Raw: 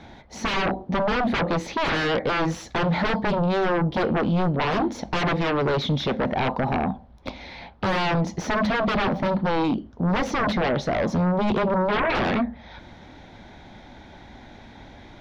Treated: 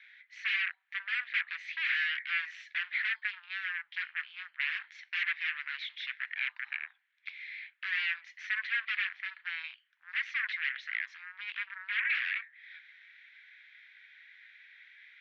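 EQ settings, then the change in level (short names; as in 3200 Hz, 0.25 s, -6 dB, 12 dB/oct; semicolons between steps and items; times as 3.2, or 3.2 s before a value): elliptic high-pass 1700 Hz, stop band 70 dB; synth low-pass 2300 Hz, resonance Q 2.4; -6.0 dB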